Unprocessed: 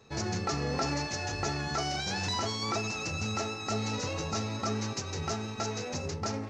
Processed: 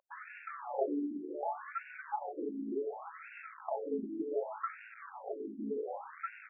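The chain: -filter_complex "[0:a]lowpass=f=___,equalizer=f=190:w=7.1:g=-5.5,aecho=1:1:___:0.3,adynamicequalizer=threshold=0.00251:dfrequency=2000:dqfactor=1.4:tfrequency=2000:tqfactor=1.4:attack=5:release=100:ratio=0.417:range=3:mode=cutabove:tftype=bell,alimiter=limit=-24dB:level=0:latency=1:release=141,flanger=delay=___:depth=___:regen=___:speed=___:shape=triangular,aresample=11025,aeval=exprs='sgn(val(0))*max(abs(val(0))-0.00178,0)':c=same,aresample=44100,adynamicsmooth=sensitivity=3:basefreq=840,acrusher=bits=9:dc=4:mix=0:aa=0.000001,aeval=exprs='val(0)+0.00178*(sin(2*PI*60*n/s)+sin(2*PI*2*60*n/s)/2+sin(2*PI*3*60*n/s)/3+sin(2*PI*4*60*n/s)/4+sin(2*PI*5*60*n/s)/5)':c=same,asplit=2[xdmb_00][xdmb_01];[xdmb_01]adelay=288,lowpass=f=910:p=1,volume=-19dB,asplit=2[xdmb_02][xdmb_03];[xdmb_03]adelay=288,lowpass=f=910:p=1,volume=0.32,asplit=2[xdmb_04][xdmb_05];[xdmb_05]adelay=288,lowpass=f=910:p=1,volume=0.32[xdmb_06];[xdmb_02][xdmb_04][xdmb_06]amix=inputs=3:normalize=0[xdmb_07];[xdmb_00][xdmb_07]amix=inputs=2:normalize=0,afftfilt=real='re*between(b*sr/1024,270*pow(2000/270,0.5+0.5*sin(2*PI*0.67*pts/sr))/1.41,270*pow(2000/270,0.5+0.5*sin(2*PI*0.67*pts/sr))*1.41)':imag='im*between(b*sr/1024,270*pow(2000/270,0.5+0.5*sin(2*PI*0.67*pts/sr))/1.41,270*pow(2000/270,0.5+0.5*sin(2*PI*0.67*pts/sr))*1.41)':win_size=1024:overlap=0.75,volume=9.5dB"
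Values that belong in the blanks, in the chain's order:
2.9k, 7.2, 2.8, 5.2, 20, 0.55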